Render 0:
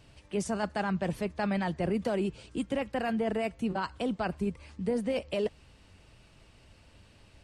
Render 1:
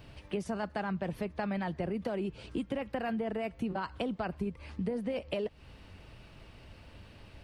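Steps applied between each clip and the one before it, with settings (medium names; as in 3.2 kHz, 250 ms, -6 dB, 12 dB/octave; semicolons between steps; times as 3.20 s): peaking EQ 7.8 kHz -14 dB 1.2 oct; compression, threshold -37 dBFS, peak gain reduction 11.5 dB; treble shelf 6 kHz +4.5 dB; trim +5.5 dB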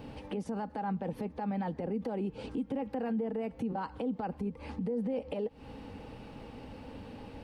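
compression 4:1, threshold -39 dBFS, peak gain reduction 9 dB; small resonant body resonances 260/470/800 Hz, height 16 dB, ringing for 35 ms; peak limiter -26.5 dBFS, peak gain reduction 9.5 dB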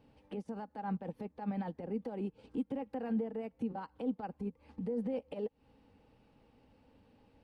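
upward expansion 2.5:1, over -43 dBFS; trim +1 dB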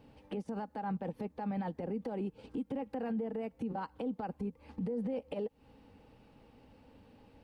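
peak limiter -35 dBFS, peak gain reduction 9 dB; trim +5.5 dB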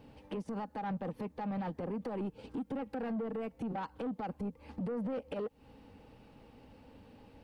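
saturation -35 dBFS, distortion -14 dB; trim +3 dB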